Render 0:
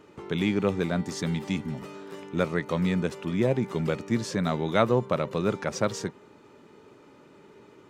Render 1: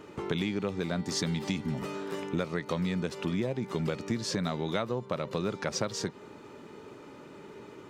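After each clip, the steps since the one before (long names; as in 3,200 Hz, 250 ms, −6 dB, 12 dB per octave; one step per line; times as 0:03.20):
dynamic equaliser 4,500 Hz, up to +6 dB, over −53 dBFS, Q 1.6
downward compressor 12 to 1, threshold −32 dBFS, peak gain reduction 17 dB
level +5 dB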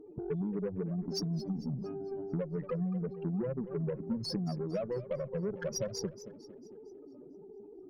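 expanding power law on the bin magnitudes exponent 3.9
harmonic generator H 8 −26 dB, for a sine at −20.5 dBFS
feedback echo with a swinging delay time 226 ms, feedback 47%, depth 127 cents, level −15 dB
level −2.5 dB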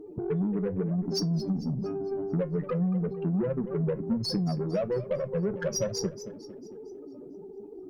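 flanger 0.96 Hz, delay 9.8 ms, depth 1.4 ms, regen −69%
in parallel at −8 dB: soft clipping −39 dBFS, distortion −11 dB
on the sum: level +8.5 dB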